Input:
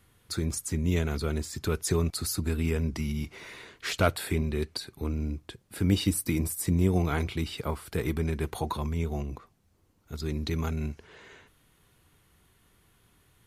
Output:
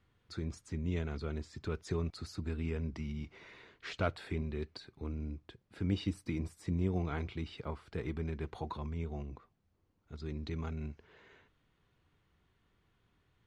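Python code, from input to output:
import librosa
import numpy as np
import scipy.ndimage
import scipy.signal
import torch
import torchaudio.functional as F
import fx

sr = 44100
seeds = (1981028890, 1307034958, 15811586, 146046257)

y = fx.air_absorb(x, sr, metres=140.0)
y = y * 10.0 ** (-8.5 / 20.0)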